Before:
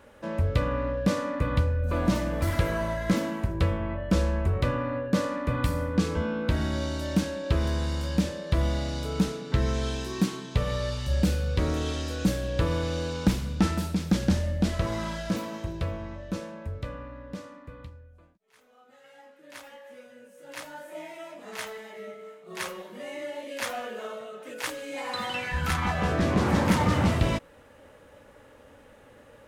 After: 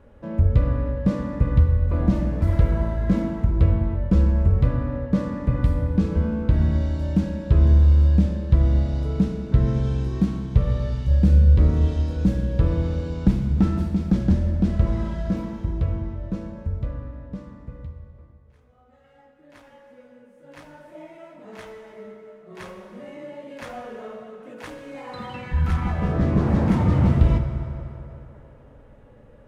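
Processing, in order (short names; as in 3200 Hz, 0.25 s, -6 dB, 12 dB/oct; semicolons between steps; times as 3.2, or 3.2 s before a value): tilt -3.5 dB/oct; on a send: reverb RT60 3.4 s, pre-delay 3 ms, DRR 4.5 dB; on the sum: gain -4.5 dB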